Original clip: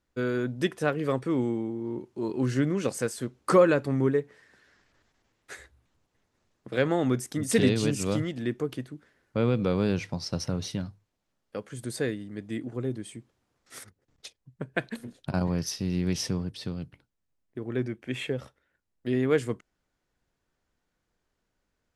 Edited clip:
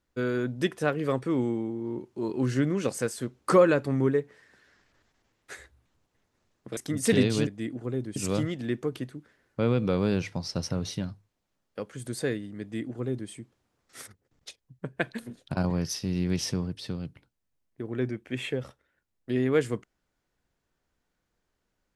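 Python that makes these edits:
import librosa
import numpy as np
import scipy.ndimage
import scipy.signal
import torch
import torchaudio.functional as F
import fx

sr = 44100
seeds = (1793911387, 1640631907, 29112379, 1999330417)

y = fx.edit(x, sr, fx.cut(start_s=6.77, length_s=0.46),
    fx.duplicate(start_s=12.38, length_s=0.69, to_s=7.93), tone=tone)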